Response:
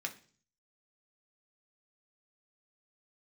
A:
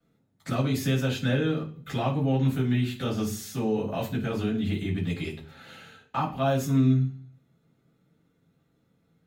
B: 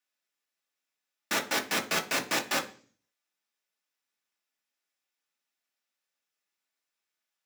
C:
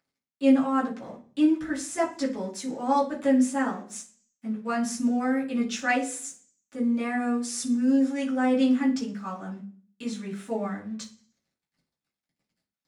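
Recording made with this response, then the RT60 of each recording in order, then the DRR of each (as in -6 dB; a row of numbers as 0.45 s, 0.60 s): B; 0.45 s, 0.45 s, 0.45 s; -17.0 dB, 2.0 dB, -7.0 dB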